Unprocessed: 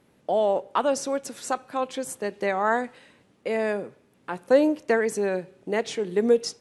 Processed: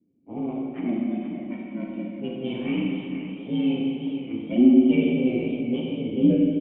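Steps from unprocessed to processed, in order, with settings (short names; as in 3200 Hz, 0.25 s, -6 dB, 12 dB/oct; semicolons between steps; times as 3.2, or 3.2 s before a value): inharmonic rescaling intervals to 122%; doubler 13 ms -11.5 dB; ring modulator 59 Hz; HPF 130 Hz; sample leveller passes 1; low shelf 470 Hz +7 dB; low-pass opened by the level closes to 960 Hz, open at -17 dBFS; vocal tract filter i; bell 2600 Hz +3 dB 0.8 oct; Schroeder reverb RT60 2 s, combs from 33 ms, DRR -1.5 dB; warbling echo 0.471 s, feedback 51%, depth 73 cents, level -10 dB; gain +5.5 dB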